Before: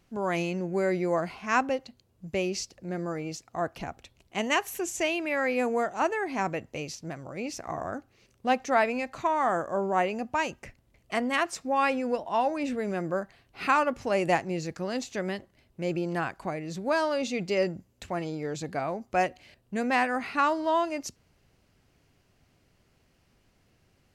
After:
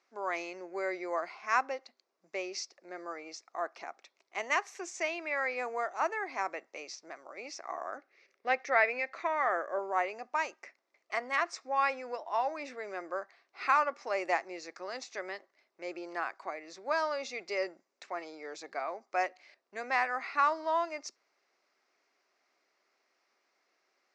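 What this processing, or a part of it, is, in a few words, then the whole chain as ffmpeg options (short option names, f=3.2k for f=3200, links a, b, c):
phone speaker on a table: -filter_complex "[0:a]highpass=f=400:w=0.5412,highpass=f=400:w=1.3066,equalizer=f=480:t=q:w=4:g=-5,equalizer=f=1.2k:t=q:w=4:g=5,equalizer=f=2.1k:t=q:w=4:g=5,equalizer=f=3k:t=q:w=4:g=-8,equalizer=f=5.4k:t=q:w=4:g=4,lowpass=f=6.4k:w=0.5412,lowpass=f=6.4k:w=1.3066,asettb=1/sr,asplit=3[a][b][c];[a]atrim=end=7.974[d];[b]atrim=start=7.97:end=9.79,asetpts=PTS-STARTPTS,afade=t=in:d=0.004:c=qsin,afade=t=out:st=1.816:d=0.004:c=qsin,equalizer=f=125:t=o:w=1:g=4,equalizer=f=500:t=o:w=1:g=5,equalizer=f=1k:t=o:w=1:g=-6,equalizer=f=2k:t=o:w=1:g=8,equalizer=f=8k:t=o:w=1:g=-7[e];[c]atrim=start=9.786[f];[d][e]acrossfade=d=0.004:c1=hsin:c2=qsin[g];[g][f]acrossfade=d=0.004:c1=qsin:c2=hsin,volume=-5dB"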